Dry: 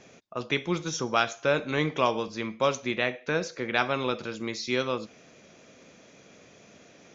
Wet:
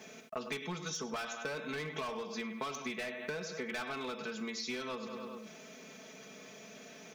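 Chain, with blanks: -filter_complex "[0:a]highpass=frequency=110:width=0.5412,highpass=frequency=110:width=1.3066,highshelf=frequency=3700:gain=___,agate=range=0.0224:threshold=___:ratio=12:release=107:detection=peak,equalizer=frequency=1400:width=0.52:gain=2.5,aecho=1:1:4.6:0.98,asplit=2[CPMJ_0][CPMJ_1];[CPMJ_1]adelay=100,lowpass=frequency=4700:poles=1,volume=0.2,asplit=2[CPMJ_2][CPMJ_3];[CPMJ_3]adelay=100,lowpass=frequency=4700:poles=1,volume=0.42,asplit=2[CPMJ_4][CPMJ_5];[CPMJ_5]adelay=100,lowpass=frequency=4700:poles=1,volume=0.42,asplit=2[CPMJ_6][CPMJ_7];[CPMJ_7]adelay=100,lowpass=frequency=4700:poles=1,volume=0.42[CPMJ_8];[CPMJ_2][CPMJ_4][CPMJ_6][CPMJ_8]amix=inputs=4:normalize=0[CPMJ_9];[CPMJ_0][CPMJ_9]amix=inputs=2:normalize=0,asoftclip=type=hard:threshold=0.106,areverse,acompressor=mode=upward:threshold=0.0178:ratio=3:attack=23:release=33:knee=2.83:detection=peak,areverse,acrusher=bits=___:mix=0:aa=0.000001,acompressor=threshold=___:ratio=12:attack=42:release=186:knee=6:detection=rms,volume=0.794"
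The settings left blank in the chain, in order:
3.5, 0.00631, 10, 0.0158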